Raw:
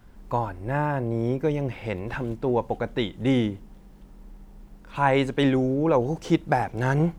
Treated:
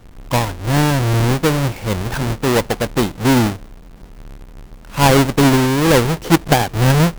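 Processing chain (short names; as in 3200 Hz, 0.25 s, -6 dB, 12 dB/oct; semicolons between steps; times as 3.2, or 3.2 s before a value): half-waves squared off; gain +4.5 dB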